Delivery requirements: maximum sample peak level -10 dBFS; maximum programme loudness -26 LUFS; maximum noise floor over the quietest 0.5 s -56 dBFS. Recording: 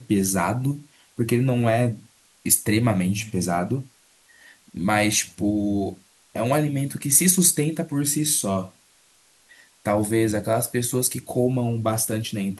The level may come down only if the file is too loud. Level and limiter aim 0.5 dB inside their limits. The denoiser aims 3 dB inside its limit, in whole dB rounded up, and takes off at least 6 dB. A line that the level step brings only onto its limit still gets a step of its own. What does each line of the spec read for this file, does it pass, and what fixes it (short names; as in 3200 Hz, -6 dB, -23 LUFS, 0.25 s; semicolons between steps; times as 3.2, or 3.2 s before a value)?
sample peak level -3.5 dBFS: fail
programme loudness -22.0 LUFS: fail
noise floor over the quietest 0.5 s -58 dBFS: OK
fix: gain -4.5 dB; limiter -10.5 dBFS